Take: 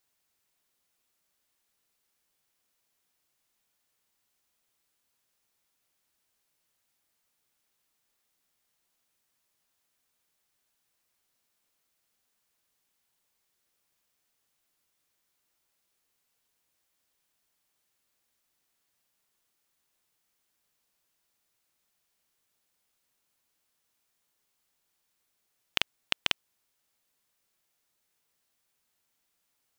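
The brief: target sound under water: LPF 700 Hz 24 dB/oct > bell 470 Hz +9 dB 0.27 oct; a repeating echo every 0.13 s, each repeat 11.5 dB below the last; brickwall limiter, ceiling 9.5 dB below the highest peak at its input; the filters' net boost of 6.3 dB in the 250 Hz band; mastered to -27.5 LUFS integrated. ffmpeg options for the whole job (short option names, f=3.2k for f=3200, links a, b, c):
-af "equalizer=f=250:t=o:g=7.5,alimiter=limit=-13dB:level=0:latency=1,lowpass=f=700:w=0.5412,lowpass=f=700:w=1.3066,equalizer=f=470:t=o:w=0.27:g=9,aecho=1:1:130|260|390:0.266|0.0718|0.0194,volume=27.5dB"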